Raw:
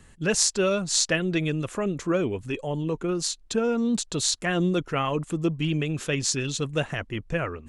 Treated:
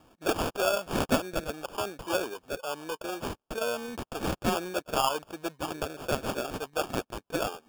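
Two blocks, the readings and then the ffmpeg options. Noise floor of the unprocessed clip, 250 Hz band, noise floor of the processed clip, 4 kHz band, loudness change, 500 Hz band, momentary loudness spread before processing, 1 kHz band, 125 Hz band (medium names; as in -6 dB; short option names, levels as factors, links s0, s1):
-52 dBFS, -8.5 dB, -80 dBFS, -7.0 dB, -6.0 dB, -3.5 dB, 7 LU, +2.5 dB, -12.0 dB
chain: -af "highpass=740,lowpass=3700,acrusher=samples=22:mix=1:aa=0.000001,volume=1.33"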